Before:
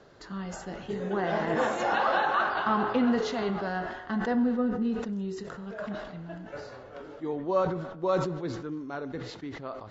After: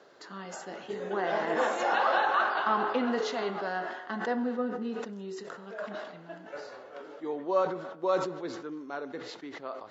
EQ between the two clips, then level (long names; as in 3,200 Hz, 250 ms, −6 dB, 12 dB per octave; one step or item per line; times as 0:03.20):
high-pass filter 330 Hz 12 dB per octave
0.0 dB